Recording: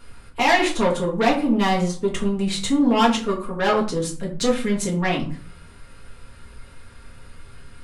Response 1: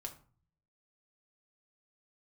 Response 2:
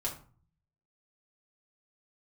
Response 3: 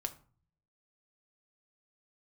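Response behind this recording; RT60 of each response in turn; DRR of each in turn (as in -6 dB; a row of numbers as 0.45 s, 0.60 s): 2; 0.40 s, 0.40 s, 0.40 s; 2.0 dB, -4.0 dB, 6.5 dB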